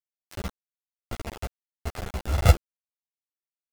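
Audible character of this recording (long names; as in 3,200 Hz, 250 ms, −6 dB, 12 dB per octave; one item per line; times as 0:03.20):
a buzz of ramps at a fixed pitch in blocks of 64 samples
sample-and-hold tremolo 2.7 Hz, depth 85%
a quantiser's noise floor 6 bits, dither none
a shimmering, thickened sound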